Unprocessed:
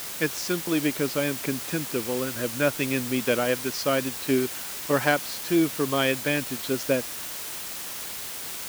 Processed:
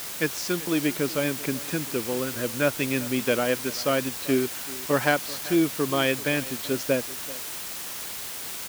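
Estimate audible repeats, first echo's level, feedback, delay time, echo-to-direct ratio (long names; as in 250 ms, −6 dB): 1, −19.0 dB, repeats not evenly spaced, 386 ms, −19.0 dB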